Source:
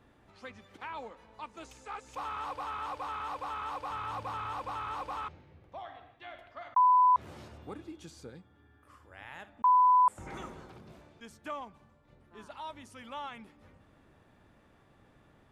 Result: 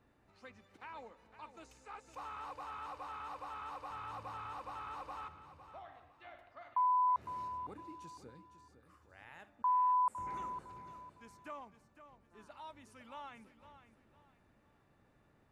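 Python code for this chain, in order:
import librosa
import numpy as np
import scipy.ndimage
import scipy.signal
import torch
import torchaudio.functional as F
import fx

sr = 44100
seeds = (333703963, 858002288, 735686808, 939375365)

y = fx.notch(x, sr, hz=3300.0, q=9.5)
y = fx.echo_feedback(y, sr, ms=507, feedback_pct=31, wet_db=-12)
y = F.gain(torch.from_numpy(y), -8.0).numpy()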